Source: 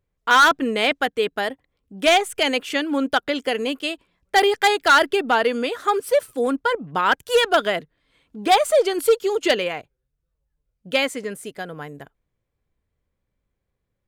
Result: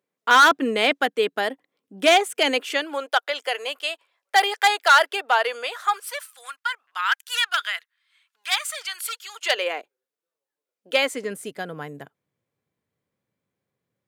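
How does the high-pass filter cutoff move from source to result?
high-pass filter 24 dB per octave
0:02.38 210 Hz
0:03.10 580 Hz
0:05.58 580 Hz
0:06.42 1,300 Hz
0:09.32 1,300 Hz
0:09.72 330 Hz
0:11.01 330 Hz
0:11.50 120 Hz

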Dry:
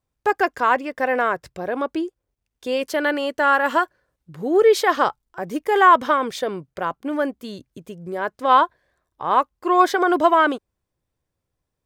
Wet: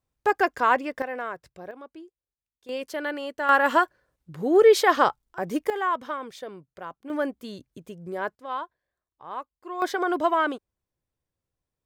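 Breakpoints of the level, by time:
−2.5 dB
from 0:01.02 −12 dB
from 0:01.71 −19.5 dB
from 0:02.69 −9 dB
from 0:03.49 −1 dB
from 0:05.70 −13 dB
from 0:07.10 −4.5 dB
from 0:08.35 −17 dB
from 0:09.82 −7 dB

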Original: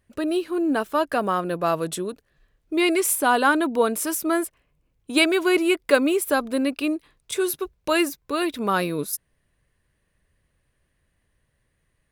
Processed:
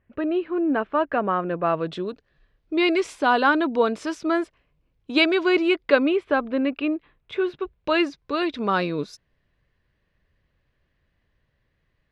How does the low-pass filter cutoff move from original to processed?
low-pass filter 24 dB per octave
0:01.66 2,600 Hz
0:02.10 5,000 Hz
0:05.64 5,000 Hz
0:06.32 3,000 Hz
0:07.48 3,000 Hz
0:08.20 5,000 Hz

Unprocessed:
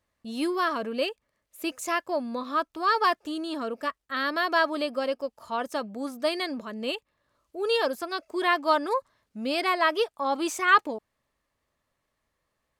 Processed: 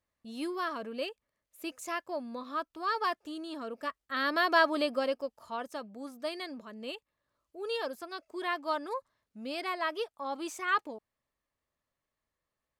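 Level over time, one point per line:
0:03.64 −8 dB
0:04.40 −1 dB
0:04.90 −1 dB
0:05.79 −9.5 dB

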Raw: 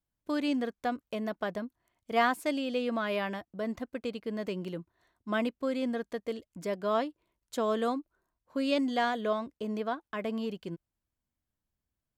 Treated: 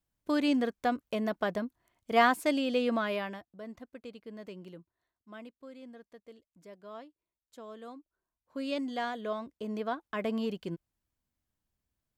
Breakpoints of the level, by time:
0:02.93 +2.5 dB
0:03.59 −10 dB
0:04.71 −10 dB
0:05.28 −17 dB
0:07.80 −17 dB
0:08.60 −5.5 dB
0:09.21 −5.5 dB
0:10.22 +1.5 dB

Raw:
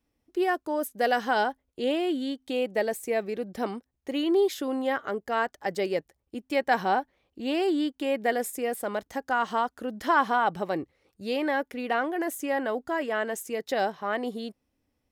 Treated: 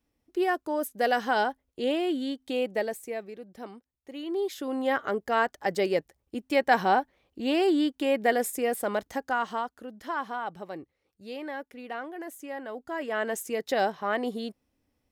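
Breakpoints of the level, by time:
0:02.69 −0.5 dB
0:03.40 −11 dB
0:04.13 −11 dB
0:04.96 +2 dB
0:09.06 +2 dB
0:09.98 −9.5 dB
0:12.66 −9.5 dB
0:13.30 +1 dB

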